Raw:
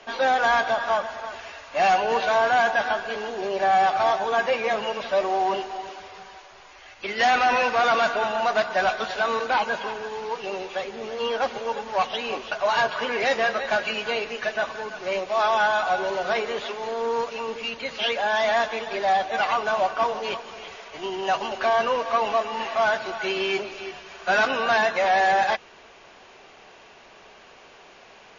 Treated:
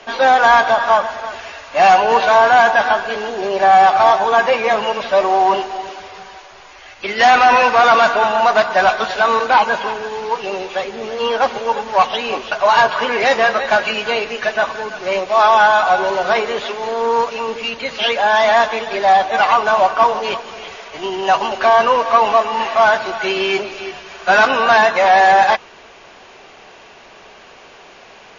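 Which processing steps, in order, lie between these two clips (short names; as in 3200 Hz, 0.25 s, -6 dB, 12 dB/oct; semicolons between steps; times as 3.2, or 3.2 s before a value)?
dynamic EQ 990 Hz, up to +5 dB, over -33 dBFS, Q 1.9; gain +7.5 dB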